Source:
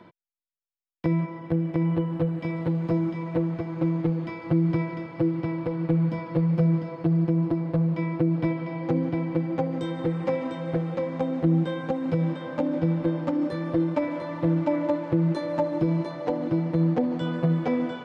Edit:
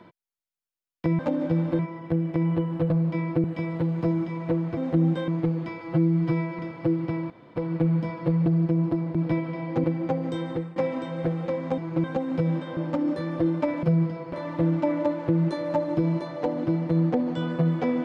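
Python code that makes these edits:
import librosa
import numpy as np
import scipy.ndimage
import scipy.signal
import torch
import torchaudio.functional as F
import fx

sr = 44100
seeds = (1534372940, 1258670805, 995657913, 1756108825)

y = fx.edit(x, sr, fx.swap(start_s=3.63, length_s=0.26, other_s=11.27, other_length_s=0.51),
    fx.stretch_span(start_s=4.42, length_s=0.52, factor=1.5),
    fx.insert_room_tone(at_s=5.65, length_s=0.26),
    fx.move(start_s=6.55, length_s=0.5, to_s=14.17),
    fx.move(start_s=7.74, length_s=0.54, to_s=2.3),
    fx.cut(start_s=8.97, length_s=0.36),
    fx.fade_out_to(start_s=9.97, length_s=0.28, floor_db=-17.0),
    fx.move(start_s=12.51, length_s=0.6, to_s=1.19), tone=tone)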